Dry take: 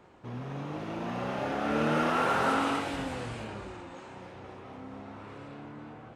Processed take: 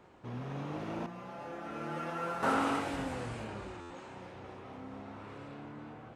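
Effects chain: dynamic bell 3.4 kHz, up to -4 dB, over -50 dBFS, Q 1.2; 1.06–2.43 s: feedback comb 170 Hz, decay 0.19 s, harmonics all, mix 90%; buffer glitch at 3.80 s, samples 512; trim -2 dB

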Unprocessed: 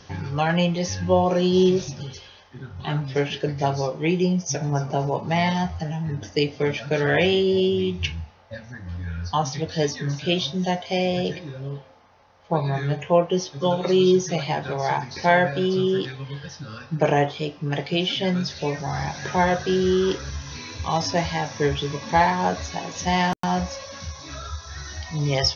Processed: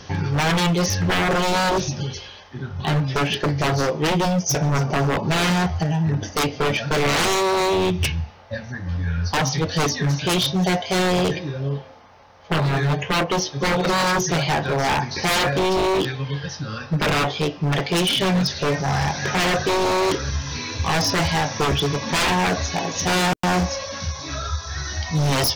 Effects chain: wavefolder -21.5 dBFS; trim +7 dB

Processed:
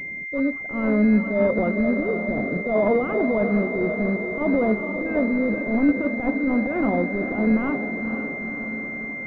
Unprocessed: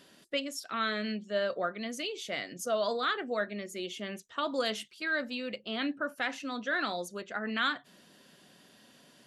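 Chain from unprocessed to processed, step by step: echo that smears into a reverb 483 ms, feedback 64%, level -8.5 dB; transient shaper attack -11 dB, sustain +1 dB; tilt EQ -4.5 dB/octave; class-D stage that switches slowly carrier 2.1 kHz; trim +9 dB

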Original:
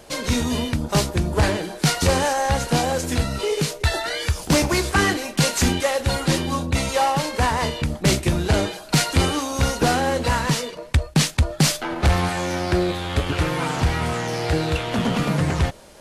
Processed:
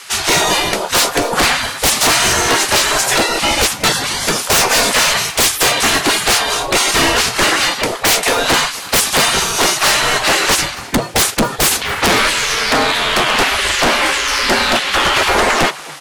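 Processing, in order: tilt EQ -1.5 dB/octave; spectral gate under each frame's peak -20 dB weak; sine folder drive 17 dB, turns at -8 dBFS; on a send: frequency-shifting echo 253 ms, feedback 53%, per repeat +140 Hz, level -21 dB

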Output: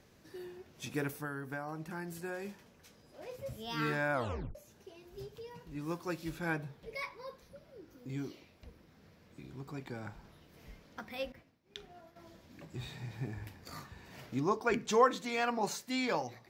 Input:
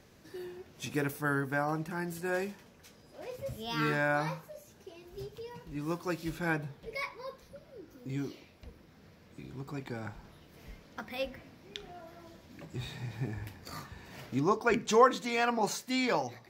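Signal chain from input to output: 1.11–2.45 s: compression 10:1, threshold -33 dBFS, peak gain reduction 7.5 dB; 4.13 s: tape stop 0.42 s; 11.32–12.16 s: expander -44 dBFS; trim -3.5 dB

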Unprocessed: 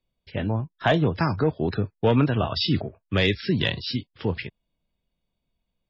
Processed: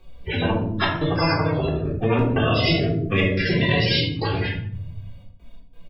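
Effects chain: harmonic-percussive separation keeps harmonic; treble shelf 2.9 kHz -9.5 dB; compression 3:1, threshold -35 dBFS, peak gain reduction 14 dB; 1.77–3.88 s: graphic EQ 125/250/500/1000/2000/4000 Hz +9/+7/+7/-10/+6/-9 dB; trance gate "xxx.x.xxxx.xx." 89 bpm -24 dB; doubling 18 ms -12.5 dB; simulated room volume 780 m³, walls furnished, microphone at 3.7 m; spectrum-flattening compressor 4:1

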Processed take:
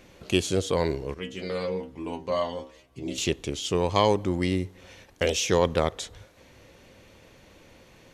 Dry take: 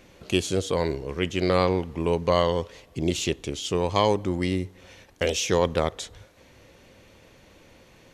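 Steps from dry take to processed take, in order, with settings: 1.14–3.18 s: inharmonic resonator 63 Hz, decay 0.35 s, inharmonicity 0.002

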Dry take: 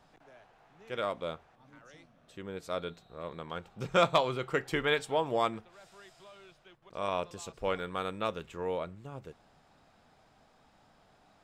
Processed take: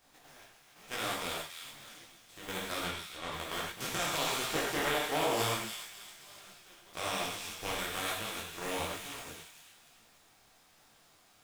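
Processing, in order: spectral contrast reduction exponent 0.38; 2.77–3.30 s: low-pass 8.8 kHz -> 5.4 kHz; 4.53–5.37 s: peaking EQ 590 Hz +9 dB 2 oct; level held to a coarse grid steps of 10 dB; peak limiter -23.5 dBFS, peak gain reduction 11 dB; 8.16–8.62 s: compression 2.5:1, threshold -43 dBFS, peak gain reduction 5.5 dB; feedback echo behind a high-pass 281 ms, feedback 38%, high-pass 2 kHz, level -6 dB; gated-style reverb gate 150 ms flat, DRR -1.5 dB; detune thickener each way 38 cents; trim +5.5 dB

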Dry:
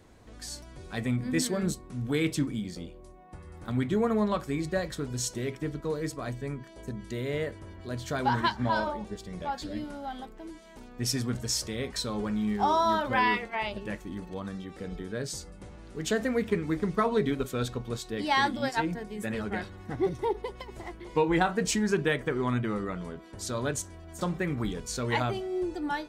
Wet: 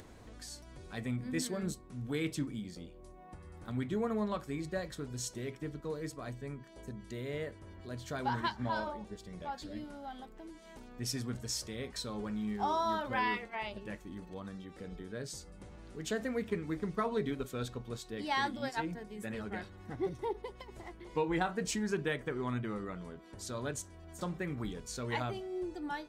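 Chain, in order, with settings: upward compressor, threshold -37 dBFS; trim -7.5 dB

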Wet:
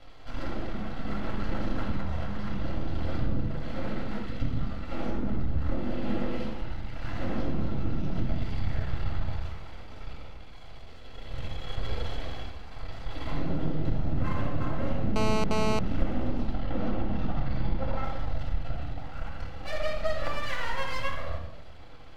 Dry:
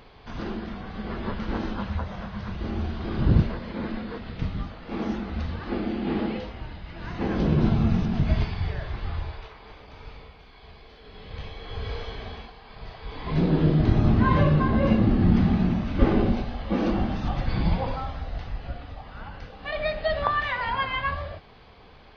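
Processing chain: 5.10–5.79 s: tilt EQ -2 dB/octave; compression 6:1, threshold -27 dBFS, peak gain reduction 14 dB; half-wave rectifier; 16.53–18.04 s: distance through air 120 m; reverberation RT60 0.85 s, pre-delay 3 ms, DRR -1.5 dB; 15.16–15.79 s: mobile phone buzz -25 dBFS; trim -3.5 dB

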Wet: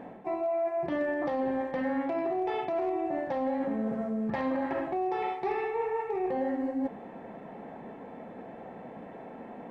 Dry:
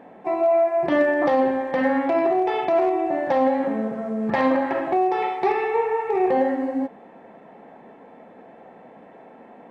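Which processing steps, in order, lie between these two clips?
bass shelf 180 Hz +10.5 dB; reverse; compression 4:1, threshold -30 dBFS, peak gain reduction 14 dB; reverse

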